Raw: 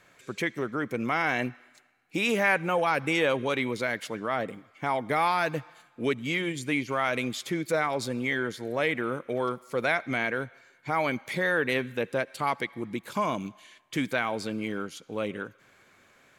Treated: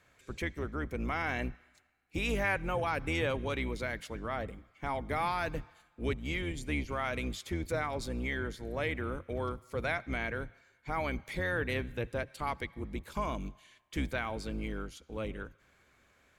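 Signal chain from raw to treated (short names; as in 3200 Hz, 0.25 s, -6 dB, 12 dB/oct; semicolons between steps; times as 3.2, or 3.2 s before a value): octaver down 2 oct, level +3 dB; gain -7.5 dB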